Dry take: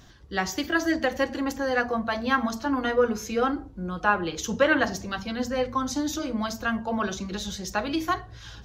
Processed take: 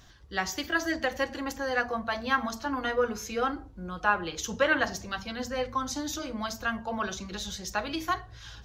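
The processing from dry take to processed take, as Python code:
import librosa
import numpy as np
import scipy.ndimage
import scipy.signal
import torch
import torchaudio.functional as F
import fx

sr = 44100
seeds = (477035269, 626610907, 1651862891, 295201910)

y = fx.peak_eq(x, sr, hz=250.0, db=-6.0, octaves=2.3)
y = y * librosa.db_to_amplitude(-1.5)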